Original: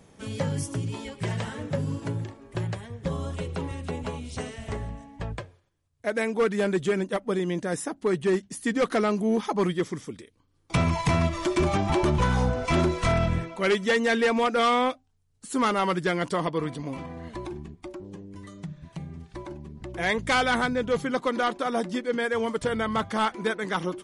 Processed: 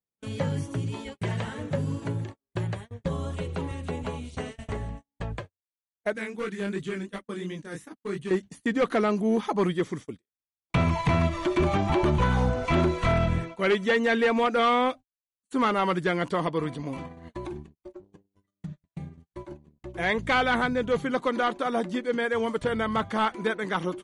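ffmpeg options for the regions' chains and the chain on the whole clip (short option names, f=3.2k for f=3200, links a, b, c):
-filter_complex "[0:a]asettb=1/sr,asplit=3[a][b][c];[a]atrim=end=6.134[d];[b]atrim=start=6.13:end=8.31,asetpts=PTS-STARTPTS,afade=t=in:d=0.004:c=qsin,afade=t=out:st=2.176:d=0.004:c=qsin,equalizer=f=650:w=0.93:g=-10.5,flanger=delay=19:depth=6.1:speed=2.8[e];[c]atrim=start=8.306[f];[d][e]acrossfade=d=0.004:c1=hsin:c2=qsin[g];[g][f]acrossfade=d=0.004:c1=qsin:c2=hsin,bandreject=f=5.2k:w=11,agate=range=-45dB:threshold=-37dB:ratio=16:detection=peak,acrossover=split=4200[h][i];[i]acompressor=threshold=-51dB:ratio=4:attack=1:release=60[j];[h][j]amix=inputs=2:normalize=0"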